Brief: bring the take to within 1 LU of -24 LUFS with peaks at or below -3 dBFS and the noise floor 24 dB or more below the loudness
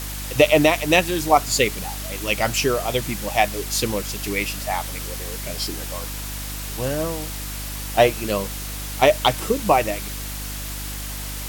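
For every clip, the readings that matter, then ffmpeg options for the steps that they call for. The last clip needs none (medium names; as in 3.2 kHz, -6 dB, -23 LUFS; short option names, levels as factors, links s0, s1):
hum 50 Hz; highest harmonic 300 Hz; hum level -30 dBFS; noise floor -31 dBFS; noise floor target -46 dBFS; loudness -22.0 LUFS; peak level -2.0 dBFS; loudness target -24.0 LUFS
-> -af "bandreject=f=50:t=h:w=4,bandreject=f=100:t=h:w=4,bandreject=f=150:t=h:w=4,bandreject=f=200:t=h:w=4,bandreject=f=250:t=h:w=4,bandreject=f=300:t=h:w=4"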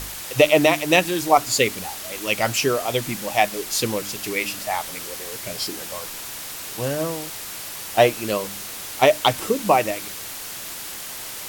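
hum not found; noise floor -34 dBFS; noise floor target -47 dBFS
-> -af "afftdn=nr=13:nf=-34"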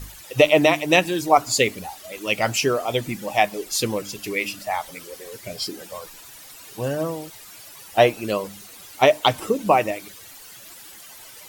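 noise floor -44 dBFS; noise floor target -46 dBFS
-> -af "afftdn=nr=6:nf=-44"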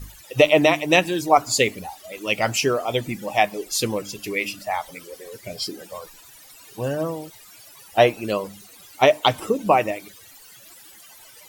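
noise floor -47 dBFS; loudness -21.5 LUFS; peak level -2.0 dBFS; loudness target -24.0 LUFS
-> -af "volume=0.75"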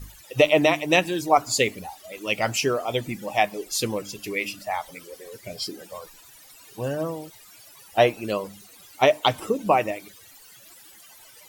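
loudness -24.0 LUFS; peak level -4.5 dBFS; noise floor -50 dBFS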